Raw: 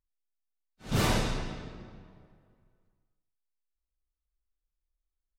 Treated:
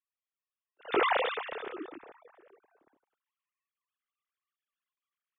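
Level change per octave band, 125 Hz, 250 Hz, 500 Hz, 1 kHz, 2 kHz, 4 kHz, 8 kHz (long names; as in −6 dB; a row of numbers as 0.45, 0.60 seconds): below −25 dB, −6.0 dB, +4.5 dB, +5.5 dB, +4.0 dB, −2.0 dB, below −35 dB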